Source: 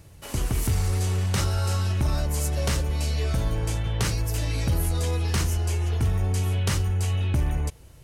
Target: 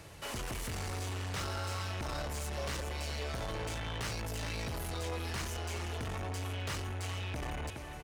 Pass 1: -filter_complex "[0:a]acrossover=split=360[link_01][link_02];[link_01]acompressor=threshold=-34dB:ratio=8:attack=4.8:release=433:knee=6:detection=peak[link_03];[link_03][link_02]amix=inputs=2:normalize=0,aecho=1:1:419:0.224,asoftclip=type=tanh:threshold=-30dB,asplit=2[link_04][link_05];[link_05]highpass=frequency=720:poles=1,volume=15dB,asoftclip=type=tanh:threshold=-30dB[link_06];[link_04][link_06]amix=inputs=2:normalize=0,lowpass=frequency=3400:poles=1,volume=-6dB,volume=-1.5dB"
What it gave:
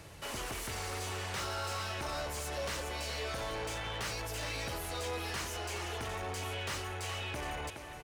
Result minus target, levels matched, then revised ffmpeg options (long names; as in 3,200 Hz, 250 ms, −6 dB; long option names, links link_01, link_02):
downward compressor: peak gain reduction +8.5 dB
-filter_complex "[0:a]acrossover=split=360[link_01][link_02];[link_01]acompressor=threshold=-24dB:ratio=8:attack=4.8:release=433:knee=6:detection=peak[link_03];[link_03][link_02]amix=inputs=2:normalize=0,aecho=1:1:419:0.224,asoftclip=type=tanh:threshold=-30dB,asplit=2[link_04][link_05];[link_05]highpass=frequency=720:poles=1,volume=15dB,asoftclip=type=tanh:threshold=-30dB[link_06];[link_04][link_06]amix=inputs=2:normalize=0,lowpass=frequency=3400:poles=1,volume=-6dB,volume=-1.5dB"